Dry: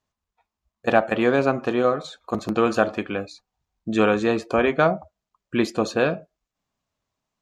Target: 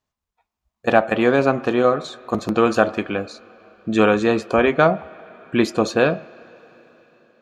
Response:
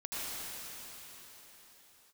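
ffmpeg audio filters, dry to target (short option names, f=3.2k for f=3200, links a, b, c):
-filter_complex "[0:a]dynaudnorm=f=140:g=9:m=11.5dB,asplit=2[a][b];[1:a]atrim=start_sample=2205,lowpass=3.5k,lowshelf=f=370:g=-7.5[c];[b][c]afir=irnorm=-1:irlink=0,volume=-23.5dB[d];[a][d]amix=inputs=2:normalize=0,volume=-1dB"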